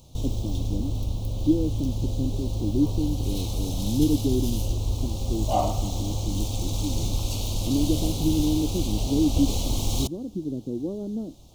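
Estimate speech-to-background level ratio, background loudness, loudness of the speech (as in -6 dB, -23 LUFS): 0.0 dB, -29.0 LUFS, -29.0 LUFS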